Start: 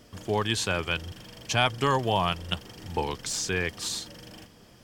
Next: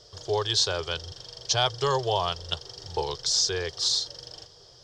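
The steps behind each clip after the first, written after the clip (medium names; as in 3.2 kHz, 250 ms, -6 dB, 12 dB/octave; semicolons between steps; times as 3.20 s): FFT filter 150 Hz 0 dB, 230 Hz -27 dB, 390 Hz +5 dB, 1.5 kHz -1 dB, 2.5 kHz -8 dB, 3.6 kHz +10 dB, 5.3 kHz +14 dB, 12 kHz -16 dB; trim -2.5 dB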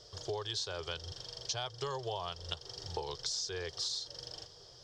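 compression 6:1, threshold -32 dBFS, peak gain reduction 13 dB; trim -3 dB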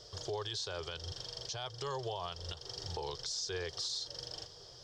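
peak limiter -31 dBFS, peak gain reduction 10 dB; trim +2 dB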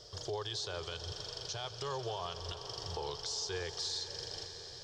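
echo with a slow build-up 90 ms, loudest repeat 5, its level -17.5 dB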